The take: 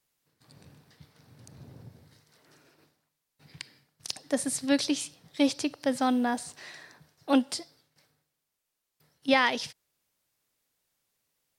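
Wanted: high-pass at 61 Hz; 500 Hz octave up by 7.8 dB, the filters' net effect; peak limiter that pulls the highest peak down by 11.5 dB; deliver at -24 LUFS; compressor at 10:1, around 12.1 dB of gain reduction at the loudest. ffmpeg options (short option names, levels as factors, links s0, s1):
-af "highpass=61,equalizer=f=500:t=o:g=8.5,acompressor=threshold=0.0631:ratio=10,volume=3.55,alimiter=limit=0.282:level=0:latency=1"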